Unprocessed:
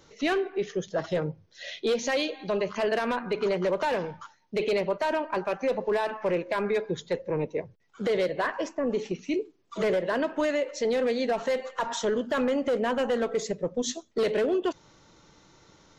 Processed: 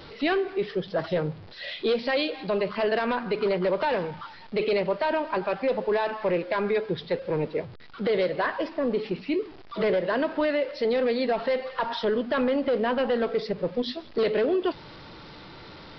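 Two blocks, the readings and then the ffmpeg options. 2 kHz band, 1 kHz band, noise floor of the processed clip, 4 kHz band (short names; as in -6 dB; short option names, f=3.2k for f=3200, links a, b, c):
+1.5 dB, +2.0 dB, -45 dBFS, +2.0 dB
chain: -af "aeval=exprs='val(0)+0.5*0.00891*sgn(val(0))':c=same,aresample=11025,aresample=44100,volume=1dB"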